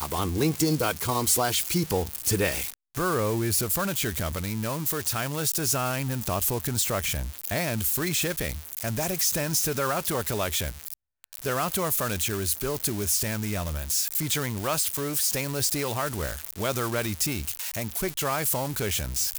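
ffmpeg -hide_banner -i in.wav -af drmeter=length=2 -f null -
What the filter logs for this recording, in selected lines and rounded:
Channel 1: DR: 11.2
Overall DR: 11.2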